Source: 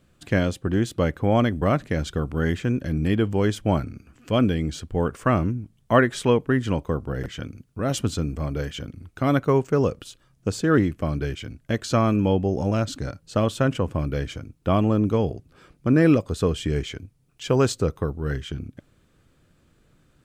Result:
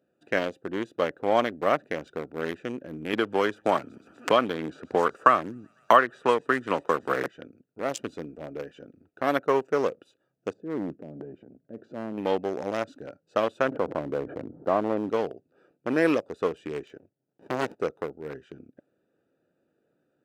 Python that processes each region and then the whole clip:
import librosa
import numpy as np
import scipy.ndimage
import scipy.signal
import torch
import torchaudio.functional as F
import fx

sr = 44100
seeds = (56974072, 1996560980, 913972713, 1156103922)

y = fx.chain(x, sr, fx.peak_eq(hz=1200.0, db=8.5, octaves=0.57),
    fx.echo_wet_highpass(ms=124, feedback_pct=72, hz=4000.0, wet_db=-13),
    fx.band_squash(depth_pct=100), at=(3.13, 7.28))
y = fx.chain(y, sr, fx.bandpass_q(hz=190.0, q=0.89),
    fx.transient(attack_db=-6, sustain_db=10), at=(10.53, 12.18))
y = fx.chain(y, sr, fx.lowpass(hz=1100.0, slope=24),
    fx.env_flatten(amount_pct=70), at=(13.68, 15.1))
y = fx.chain(y, sr, fx.highpass(hz=77.0, slope=12),
    fx.running_max(window=65), at=(16.97, 17.8))
y = fx.wiener(y, sr, points=41)
y = scipy.signal.sosfilt(scipy.signal.butter(2, 500.0, 'highpass', fs=sr, output='sos'), y)
y = F.gain(torch.from_numpy(y), 2.5).numpy()